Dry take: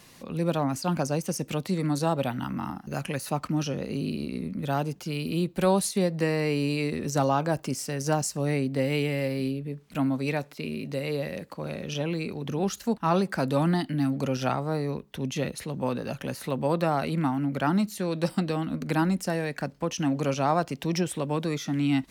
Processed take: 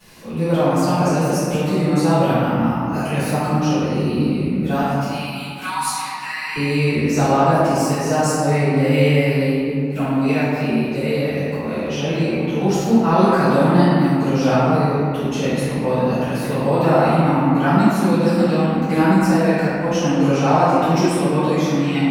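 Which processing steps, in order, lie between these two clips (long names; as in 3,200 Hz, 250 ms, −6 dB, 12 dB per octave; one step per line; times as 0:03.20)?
0:04.81–0:06.56: elliptic high-pass filter 870 Hz, stop band 40 dB
convolution reverb RT60 2.5 s, pre-delay 3 ms, DRR −18 dB
level −9.5 dB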